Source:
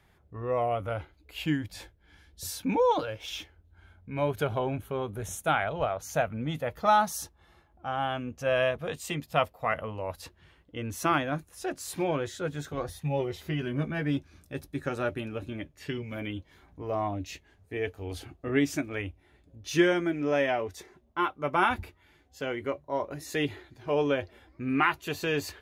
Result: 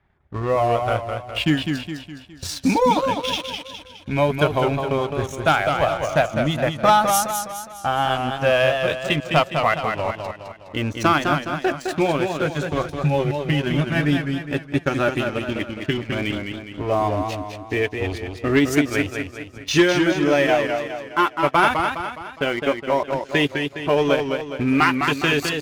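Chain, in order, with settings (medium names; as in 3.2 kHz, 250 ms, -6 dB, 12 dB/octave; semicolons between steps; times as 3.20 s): band-stop 480 Hz, Q 12; level-controlled noise filter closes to 1.8 kHz, open at -26 dBFS; treble shelf 3.3 kHz +7.5 dB; transient shaper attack +5 dB, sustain -8 dB; waveshaping leveller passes 2; in parallel at -0.5 dB: peak limiter -17 dBFS, peak gain reduction 12 dB; on the sum: modulated delay 207 ms, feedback 47%, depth 111 cents, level -5.5 dB; trim -3.5 dB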